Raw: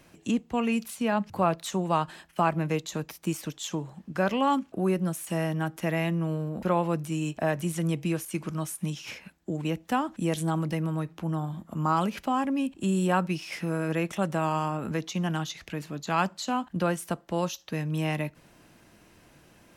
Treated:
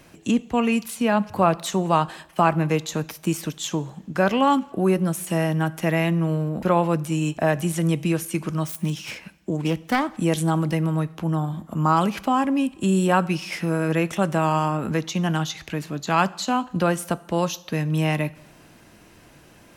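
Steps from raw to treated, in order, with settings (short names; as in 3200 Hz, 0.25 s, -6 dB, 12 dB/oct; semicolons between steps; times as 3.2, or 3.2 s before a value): 8.63–10.1 self-modulated delay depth 0.24 ms; two-slope reverb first 0.82 s, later 2.3 s, DRR 18.5 dB; gain +6 dB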